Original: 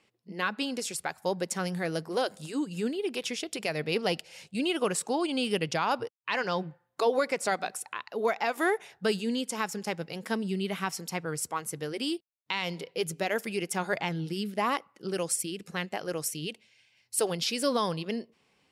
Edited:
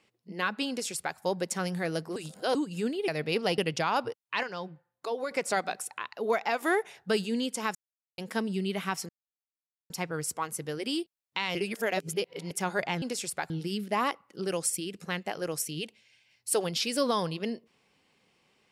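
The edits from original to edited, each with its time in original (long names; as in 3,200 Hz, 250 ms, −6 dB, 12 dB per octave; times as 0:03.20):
0:00.69–0:01.17: duplicate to 0:14.16
0:02.16–0:02.55: reverse
0:03.08–0:03.68: remove
0:04.18–0:05.53: remove
0:06.38–0:07.26: clip gain −7.5 dB
0:09.70–0:10.13: silence
0:11.04: splice in silence 0.81 s
0:12.69–0:13.65: reverse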